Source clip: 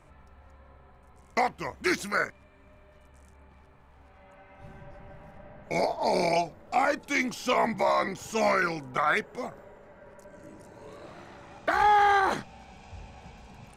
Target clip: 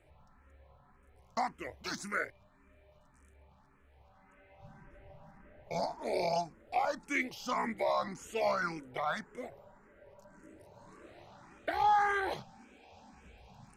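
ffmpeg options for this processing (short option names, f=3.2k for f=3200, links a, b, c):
-filter_complex "[0:a]asettb=1/sr,asplit=3[a][b][c];[a]atrim=end=12.584[d];[b]atrim=start=12.58:end=13.13,asetpts=PTS-STARTPTS,afade=t=in:d=0.004:c=qsin,afade=t=out:st=0.546:d=0.004:c=qsin,lowshelf=f=180:t=q:w=3:g=-11[e];[c]atrim=start=13.126[f];[d][e]acrossfade=d=0.004:c1=hsin:c2=qsin[g];[g][f]acrossfade=d=0.004:c1=qsin:c2=hsin,asplit=2[h][i];[i]afreqshift=1.8[j];[h][j]amix=inputs=2:normalize=1,volume=-5dB"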